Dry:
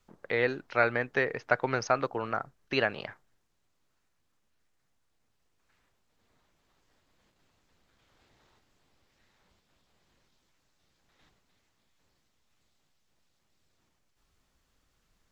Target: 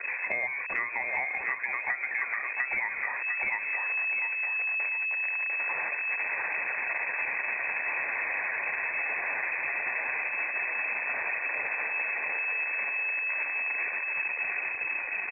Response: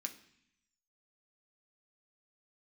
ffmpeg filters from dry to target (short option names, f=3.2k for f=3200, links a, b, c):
-filter_complex "[0:a]aeval=exprs='val(0)+0.5*0.0422*sgn(val(0))':c=same,lowpass=f=2.2k:t=q:w=0.5098,lowpass=f=2.2k:t=q:w=0.6013,lowpass=f=2.2k:t=q:w=0.9,lowpass=f=2.2k:t=q:w=2.563,afreqshift=-2600,acrossover=split=450[a][b];[b]dynaudnorm=f=200:g=13:m=7dB[c];[a][c]amix=inputs=2:normalize=0,equalizer=f=1.9k:t=o:w=0.23:g=7.5,asplit=2[d][e];[e]aecho=0:1:699|1398|2097|2796:0.596|0.179|0.0536|0.0161[f];[d][f]amix=inputs=2:normalize=0,afftdn=nr=34:nf=-44,alimiter=limit=-7dB:level=0:latency=1:release=441,acompressor=threshold=-27dB:ratio=10,bandreject=f=1.3k:w=5.1"